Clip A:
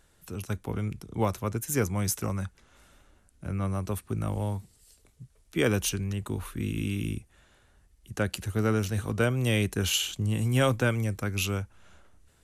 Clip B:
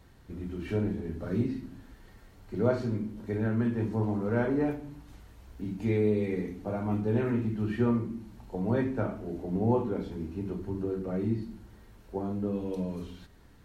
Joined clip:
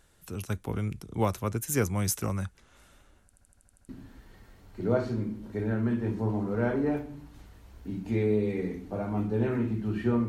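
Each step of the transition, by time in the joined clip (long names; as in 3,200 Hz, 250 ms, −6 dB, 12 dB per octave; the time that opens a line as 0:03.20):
clip A
0:03.25: stutter in place 0.08 s, 8 plays
0:03.89: continue with clip B from 0:01.63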